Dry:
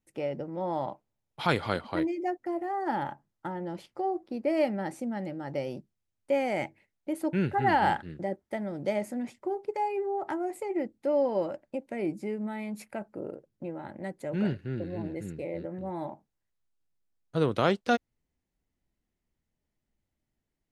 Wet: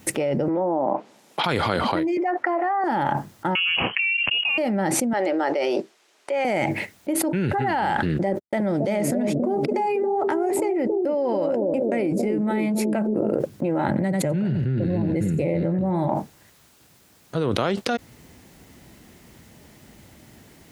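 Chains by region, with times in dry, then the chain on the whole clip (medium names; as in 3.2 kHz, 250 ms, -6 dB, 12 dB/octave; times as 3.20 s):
0.48–1.44 s: compression 1.5:1, threshold -48 dBFS + low-pass that closes with the level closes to 650 Hz, closed at -35 dBFS + high-pass 210 Hz 24 dB/octave
2.17–2.84 s: band-pass filter 1.3 kHz, Q 1 + peaking EQ 1.1 kHz +6.5 dB 3 oct
3.55–4.58 s: frequency inversion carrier 3.1 kHz + three bands compressed up and down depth 70%
5.13–6.45 s: Chebyshev high-pass 400 Hz, order 3 + distance through air 64 m + band-stop 510 Hz, Q 9.1
8.32–13.34 s: gate -51 dBFS, range -56 dB + bucket-brigade echo 275 ms, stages 1024, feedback 50%, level -5 dB
13.87–16.08 s: peaking EQ 140 Hz +11 dB 1.2 oct + delay 90 ms -12.5 dB
whole clip: high-pass 89 Hz; level flattener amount 100%; trim -3 dB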